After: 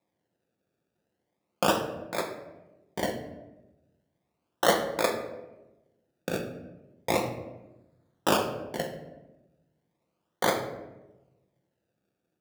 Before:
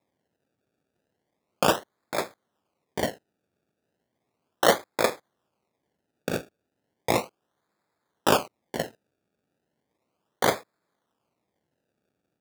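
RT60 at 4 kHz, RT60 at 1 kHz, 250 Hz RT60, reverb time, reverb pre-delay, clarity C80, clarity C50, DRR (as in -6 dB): 0.60 s, 0.90 s, 1.3 s, 1.0 s, 3 ms, 10.0 dB, 7.5 dB, 4.0 dB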